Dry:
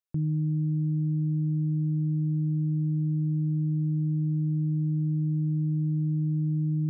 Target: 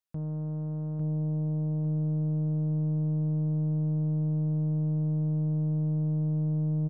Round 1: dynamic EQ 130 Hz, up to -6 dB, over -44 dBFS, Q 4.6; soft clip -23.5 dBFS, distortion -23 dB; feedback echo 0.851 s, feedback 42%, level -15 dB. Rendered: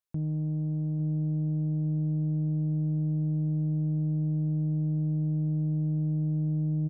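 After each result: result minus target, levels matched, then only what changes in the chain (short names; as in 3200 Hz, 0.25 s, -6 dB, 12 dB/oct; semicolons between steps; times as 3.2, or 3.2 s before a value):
echo-to-direct -10 dB; soft clip: distortion -9 dB
change: feedback echo 0.851 s, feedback 42%, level -5 dB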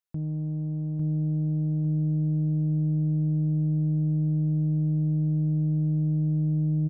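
soft clip: distortion -9 dB
change: soft clip -30 dBFS, distortion -14 dB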